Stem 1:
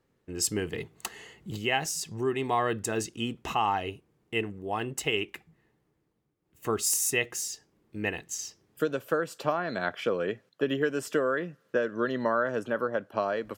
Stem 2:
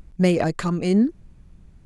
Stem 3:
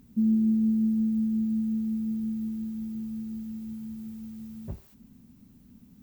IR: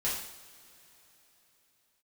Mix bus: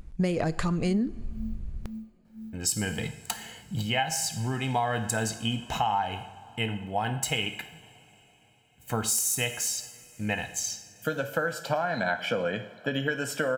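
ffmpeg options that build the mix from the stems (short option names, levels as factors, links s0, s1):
-filter_complex "[0:a]aecho=1:1:1.3:0.75,adelay=2250,volume=1.12,asplit=2[s0][s1];[s1]volume=0.251[s2];[1:a]asubboost=boost=10.5:cutoff=120,volume=0.891,asplit=2[s3][s4];[s4]volume=0.0841[s5];[2:a]aeval=exprs='val(0)*pow(10,-32*(0.5-0.5*cos(2*PI*2*n/s))/20)':c=same,adelay=450,volume=0.355,afade=t=out:st=3.12:d=0.31:silence=0.251189[s6];[3:a]atrim=start_sample=2205[s7];[s2][s5]amix=inputs=2:normalize=0[s8];[s8][s7]afir=irnorm=-1:irlink=0[s9];[s0][s3][s6][s9]amix=inputs=4:normalize=0,acompressor=threshold=0.0708:ratio=6"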